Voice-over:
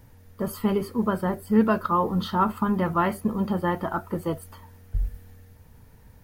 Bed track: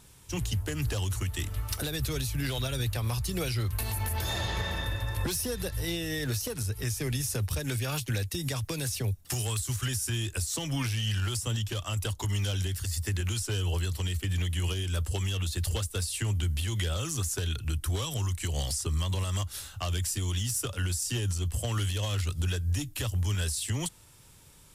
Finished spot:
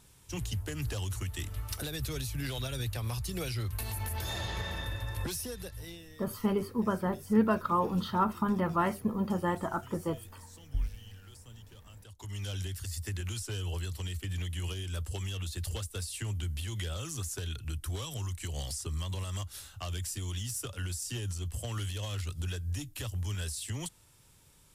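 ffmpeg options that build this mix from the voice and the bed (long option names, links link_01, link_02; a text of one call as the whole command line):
ffmpeg -i stem1.wav -i stem2.wav -filter_complex "[0:a]adelay=5800,volume=-5.5dB[link_01];[1:a]volume=11.5dB,afade=type=out:start_time=5.23:duration=0.9:silence=0.133352,afade=type=in:start_time=12.07:duration=0.48:silence=0.158489[link_02];[link_01][link_02]amix=inputs=2:normalize=0" out.wav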